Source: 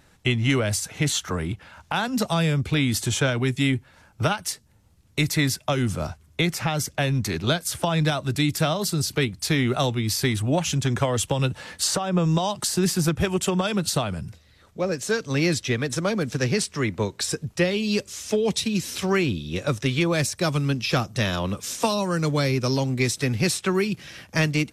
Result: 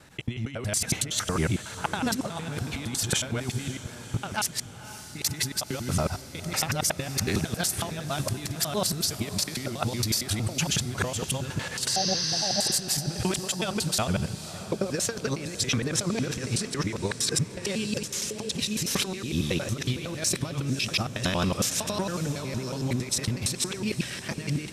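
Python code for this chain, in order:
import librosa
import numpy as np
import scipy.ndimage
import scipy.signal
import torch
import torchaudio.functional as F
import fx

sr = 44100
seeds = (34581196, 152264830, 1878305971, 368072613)

y = fx.local_reverse(x, sr, ms=92.0)
y = fx.highpass(y, sr, hz=75.0, slope=6)
y = fx.over_compress(y, sr, threshold_db=-28.0, ratio=-0.5)
y = fx.spec_repair(y, sr, seeds[0], start_s=11.91, length_s=0.78, low_hz=870.0, high_hz=6400.0, source='after')
y = fx.echo_diffused(y, sr, ms=541, feedback_pct=58, wet_db=-13)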